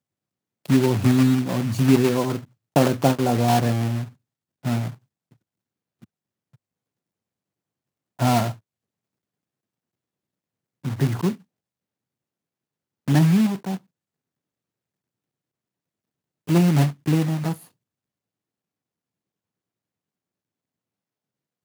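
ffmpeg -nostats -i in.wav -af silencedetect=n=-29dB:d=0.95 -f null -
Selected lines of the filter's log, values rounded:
silence_start: 4.90
silence_end: 8.20 | silence_duration: 3.29
silence_start: 8.52
silence_end: 10.85 | silence_duration: 2.33
silence_start: 11.33
silence_end: 13.08 | silence_duration: 1.74
silence_start: 13.76
silence_end: 16.48 | silence_duration: 2.72
silence_start: 17.53
silence_end: 21.64 | silence_duration: 4.11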